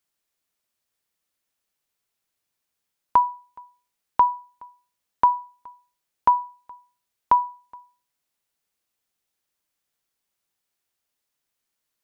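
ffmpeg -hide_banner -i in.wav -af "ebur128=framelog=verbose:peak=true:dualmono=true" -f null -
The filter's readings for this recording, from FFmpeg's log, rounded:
Integrated loudness:
  I:         -20.0 LUFS
  Threshold: -32.8 LUFS
Loudness range:
  LRA:         4.8 LU
  Threshold: -44.9 LUFS
  LRA low:   -27.8 LUFS
  LRA high:  -23.0 LUFS
True peak:
  Peak:       -7.3 dBFS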